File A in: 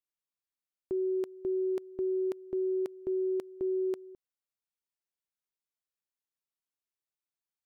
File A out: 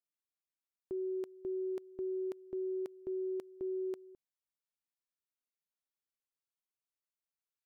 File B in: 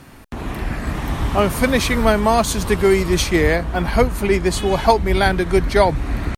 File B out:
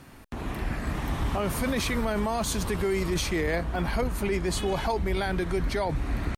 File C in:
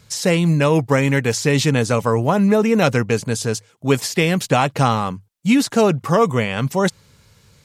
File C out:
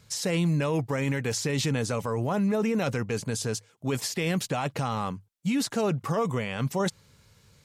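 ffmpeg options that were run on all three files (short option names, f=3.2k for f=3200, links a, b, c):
-af "alimiter=limit=-12.5dB:level=0:latency=1:release=13,volume=-6.5dB"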